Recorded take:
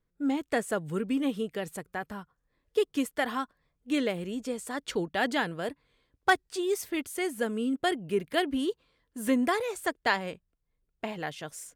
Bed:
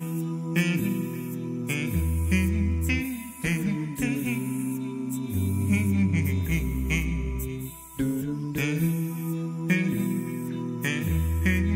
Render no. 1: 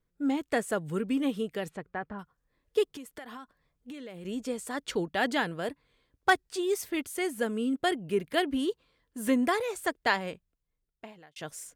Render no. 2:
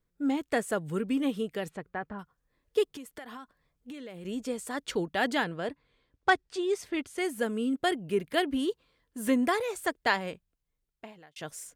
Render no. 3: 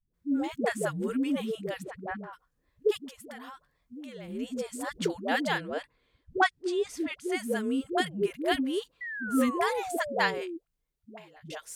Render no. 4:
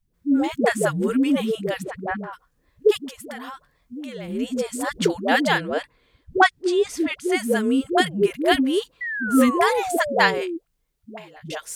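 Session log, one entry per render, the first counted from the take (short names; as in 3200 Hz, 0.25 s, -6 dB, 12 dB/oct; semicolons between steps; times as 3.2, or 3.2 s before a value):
1.68–2.18 LPF 3400 Hz -> 1600 Hz; 2.96–4.25 compressor 12:1, threshold -39 dBFS; 10.28–11.36 fade out linear
5.44–7.18 air absorption 63 m
8.87–10.51 painted sound fall 320–2000 Hz -37 dBFS; dispersion highs, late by 0.141 s, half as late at 340 Hz
gain +9 dB; limiter -2 dBFS, peak gain reduction 1 dB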